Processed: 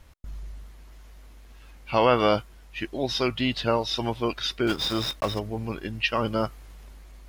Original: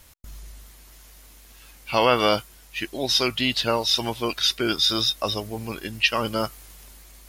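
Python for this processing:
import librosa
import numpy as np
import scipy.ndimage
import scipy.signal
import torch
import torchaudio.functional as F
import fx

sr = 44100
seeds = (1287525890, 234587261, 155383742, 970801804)

y = fx.block_float(x, sr, bits=3, at=(4.67, 5.4))
y = fx.lowpass(y, sr, hz=1700.0, slope=6)
y = fx.low_shelf(y, sr, hz=110.0, db=4.5)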